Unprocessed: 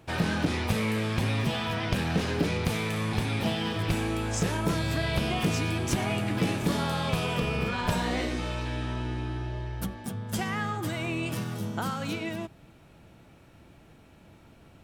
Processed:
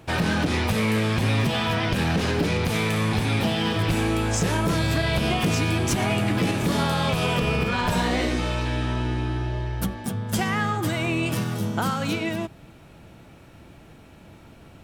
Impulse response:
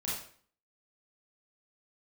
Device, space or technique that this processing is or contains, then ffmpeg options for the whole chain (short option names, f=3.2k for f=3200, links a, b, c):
limiter into clipper: -af "alimiter=limit=-19dB:level=0:latency=1:release=89,asoftclip=type=hard:threshold=-22dB,volume=6.5dB"